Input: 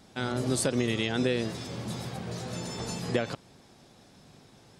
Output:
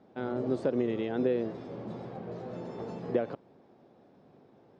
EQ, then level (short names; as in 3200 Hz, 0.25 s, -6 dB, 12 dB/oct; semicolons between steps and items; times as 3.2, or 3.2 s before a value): band-pass 440 Hz, Q 0.94; air absorption 85 m; +1.5 dB